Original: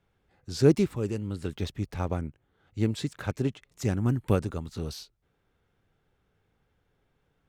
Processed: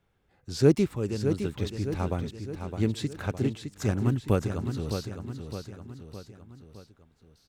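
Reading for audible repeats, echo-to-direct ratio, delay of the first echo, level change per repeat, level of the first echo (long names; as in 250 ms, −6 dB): 4, −6.0 dB, 612 ms, −5.5 dB, −7.5 dB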